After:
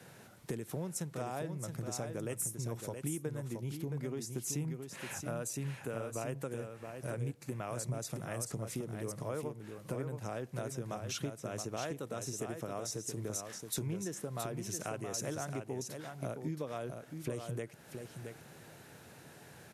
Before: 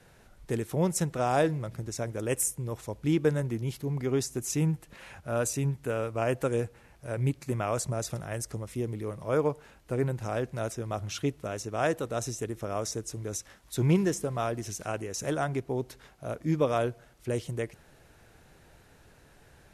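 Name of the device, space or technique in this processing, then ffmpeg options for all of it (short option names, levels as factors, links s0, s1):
ASMR close-microphone chain: -af "highpass=f=120:w=0.5412,highpass=f=120:w=1.3066,lowshelf=f=140:g=6.5,acompressor=threshold=0.0112:ratio=8,highshelf=f=8700:g=6,aecho=1:1:672:0.473,volume=1.33"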